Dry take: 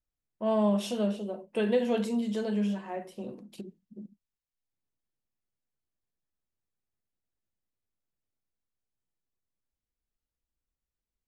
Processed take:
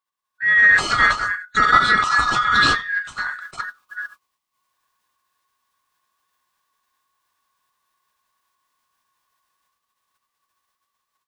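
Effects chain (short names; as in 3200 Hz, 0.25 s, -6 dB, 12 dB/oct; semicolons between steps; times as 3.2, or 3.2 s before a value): four-band scrambler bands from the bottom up 3142; formant shift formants -5 st; AGC gain up to 12 dB; bell 2300 Hz +3 dB 2.9 oct; gain -1 dB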